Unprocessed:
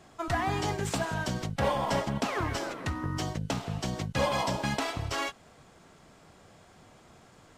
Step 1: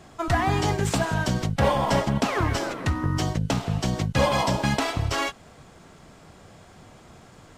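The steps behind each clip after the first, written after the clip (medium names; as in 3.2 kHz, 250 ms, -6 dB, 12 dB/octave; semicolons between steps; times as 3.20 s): bass shelf 190 Hz +4.5 dB; trim +5.5 dB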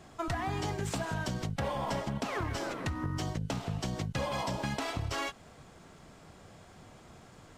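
in parallel at -8.5 dB: saturation -22 dBFS, distortion -11 dB; on the sum: compression, threshold -23 dBFS, peak gain reduction 8 dB; trim -7.5 dB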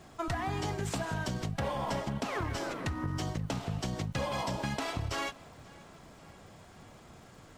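crackle 320 per s -56 dBFS; tape echo 534 ms, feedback 67%, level -22 dB, low-pass 5.1 kHz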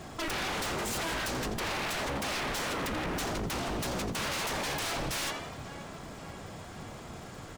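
frequency-shifting echo 85 ms, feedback 50%, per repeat +70 Hz, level -14 dB; wavefolder -37.5 dBFS; trim +9 dB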